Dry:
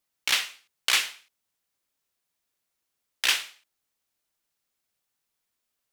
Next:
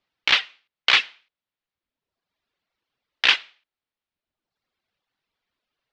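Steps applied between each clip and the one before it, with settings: reverb removal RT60 1.1 s; LPF 4100 Hz 24 dB/oct; gain +7.5 dB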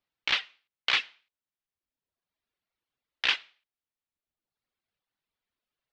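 low shelf 160 Hz +3.5 dB; gain -8.5 dB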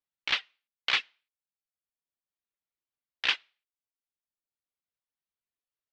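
upward expander 1.5:1, over -44 dBFS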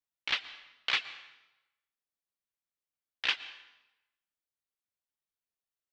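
plate-style reverb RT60 0.98 s, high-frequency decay 0.85×, pre-delay 0.105 s, DRR 14.5 dB; gain -3 dB

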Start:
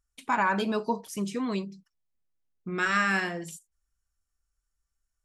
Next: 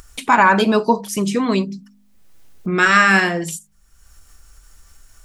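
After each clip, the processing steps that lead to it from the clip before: de-hum 50.89 Hz, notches 5; in parallel at +1.5 dB: upward compressor, threshold -31 dBFS; on the sum: gain +6 dB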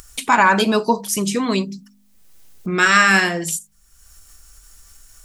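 high shelf 3600 Hz +9 dB; gain -2 dB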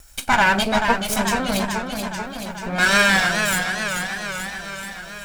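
minimum comb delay 1.3 ms; warbling echo 0.433 s, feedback 66%, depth 102 cents, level -6 dB; gain -1 dB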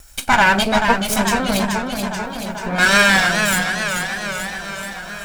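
delay with a stepping band-pass 0.455 s, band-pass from 190 Hz, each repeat 0.7 oct, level -10 dB; gain +3 dB

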